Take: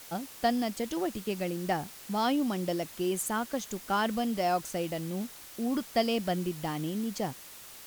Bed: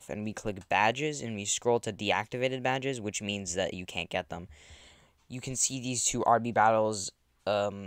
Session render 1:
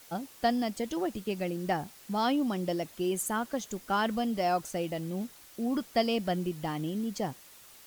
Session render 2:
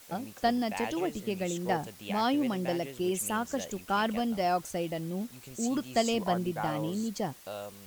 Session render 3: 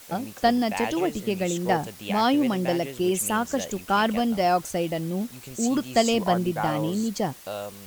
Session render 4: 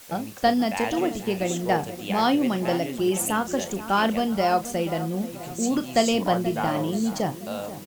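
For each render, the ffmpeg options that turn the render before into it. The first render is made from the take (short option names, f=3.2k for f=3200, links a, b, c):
-af "afftdn=nr=6:nf=-48"
-filter_complex "[1:a]volume=-11.5dB[a];[0:a][a]amix=inputs=2:normalize=0"
-af "volume=6.5dB"
-filter_complex "[0:a]asplit=2[a][b];[b]adelay=36,volume=-12dB[c];[a][c]amix=inputs=2:normalize=0,asplit=2[d][e];[e]adelay=482,lowpass=f=2k:p=1,volume=-13dB,asplit=2[f][g];[g]adelay=482,lowpass=f=2k:p=1,volume=0.51,asplit=2[h][i];[i]adelay=482,lowpass=f=2k:p=1,volume=0.51,asplit=2[j][k];[k]adelay=482,lowpass=f=2k:p=1,volume=0.51,asplit=2[l][m];[m]adelay=482,lowpass=f=2k:p=1,volume=0.51[n];[d][f][h][j][l][n]amix=inputs=6:normalize=0"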